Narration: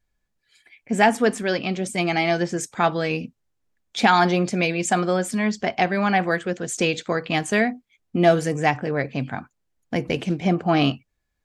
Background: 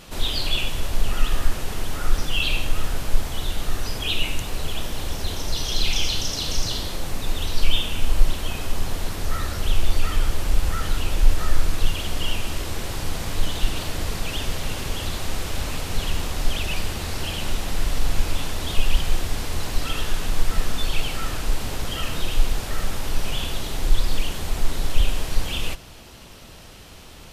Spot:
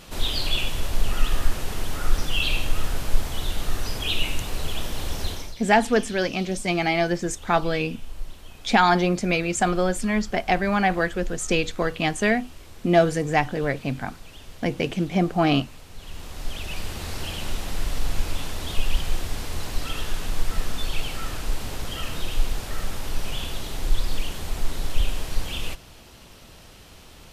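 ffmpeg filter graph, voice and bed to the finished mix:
-filter_complex "[0:a]adelay=4700,volume=-1dB[a];[1:a]volume=12.5dB,afade=t=out:st=5.25:d=0.3:silence=0.158489,afade=t=in:st=15.97:d=1.11:silence=0.211349[b];[a][b]amix=inputs=2:normalize=0"

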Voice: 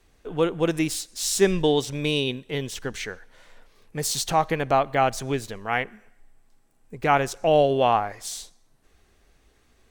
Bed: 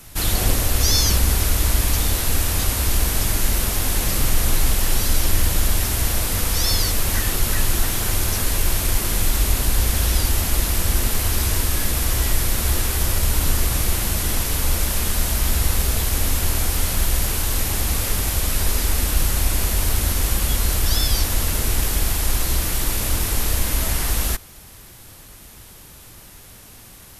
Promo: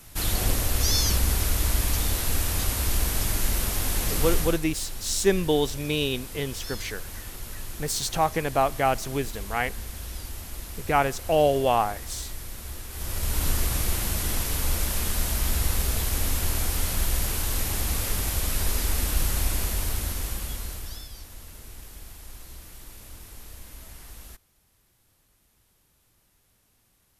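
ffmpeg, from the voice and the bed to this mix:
-filter_complex "[0:a]adelay=3850,volume=-2dB[a];[1:a]volume=6.5dB,afade=t=out:st=4.35:d=0.26:silence=0.251189,afade=t=in:st=12.89:d=0.57:silence=0.251189,afade=t=out:st=19.41:d=1.68:silence=0.133352[b];[a][b]amix=inputs=2:normalize=0"

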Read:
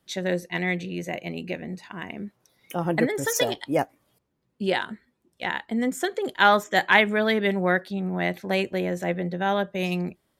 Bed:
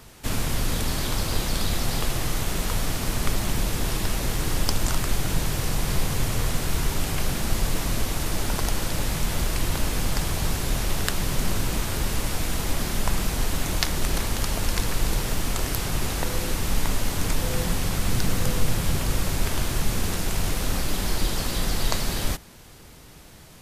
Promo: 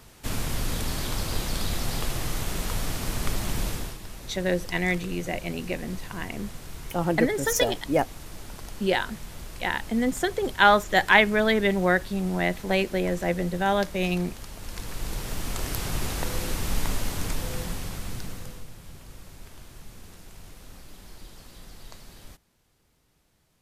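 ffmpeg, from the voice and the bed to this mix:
-filter_complex "[0:a]adelay=4200,volume=0.5dB[a];[1:a]volume=8.5dB,afade=t=out:st=3.68:d=0.29:silence=0.266073,afade=t=in:st=14.57:d=1.3:silence=0.251189,afade=t=out:st=16.89:d=1.79:silence=0.125893[b];[a][b]amix=inputs=2:normalize=0"

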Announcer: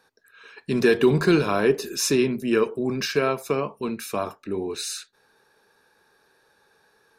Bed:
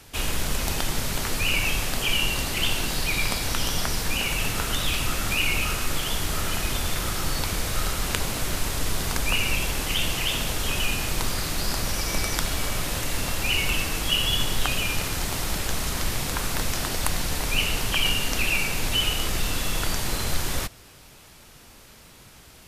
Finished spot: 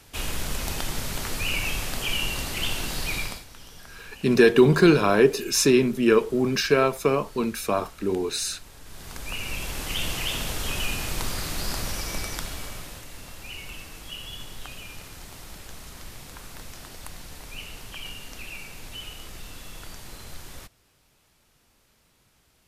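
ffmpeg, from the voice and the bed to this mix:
-filter_complex "[0:a]adelay=3550,volume=2.5dB[a];[1:a]volume=14dB,afade=t=out:st=3.15:d=0.3:silence=0.141254,afade=t=in:st=8.84:d=1.26:silence=0.133352,afade=t=out:st=11.78:d=1.28:silence=0.251189[b];[a][b]amix=inputs=2:normalize=0"

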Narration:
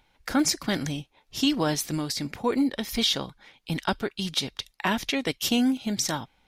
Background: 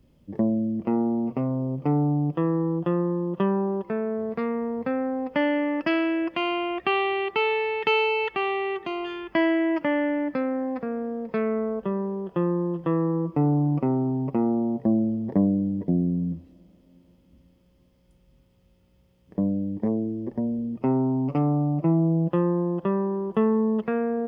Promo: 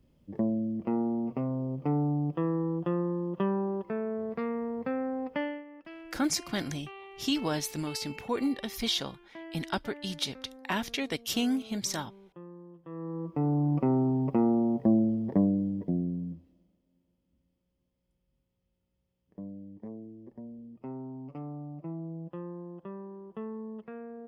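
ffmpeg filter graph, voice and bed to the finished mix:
-filter_complex "[0:a]adelay=5850,volume=-5.5dB[a];[1:a]volume=16dB,afade=t=out:st=5.26:d=0.38:silence=0.133352,afade=t=in:st=12.85:d=1.13:silence=0.0841395,afade=t=out:st=14.95:d=1.86:silence=0.158489[b];[a][b]amix=inputs=2:normalize=0"

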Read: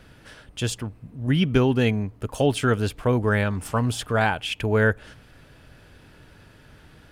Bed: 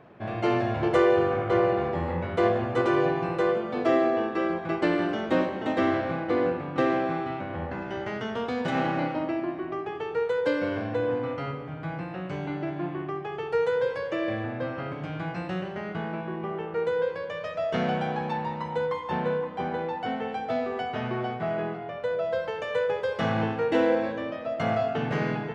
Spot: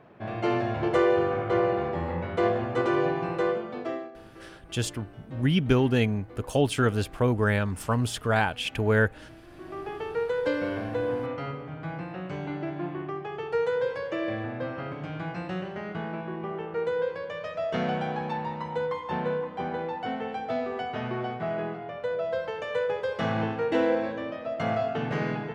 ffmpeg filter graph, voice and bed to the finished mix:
-filter_complex "[0:a]adelay=4150,volume=-2.5dB[a];[1:a]volume=19dB,afade=t=out:st=3.45:d=0.66:silence=0.0944061,afade=t=in:st=9.5:d=0.41:silence=0.0944061[b];[a][b]amix=inputs=2:normalize=0"

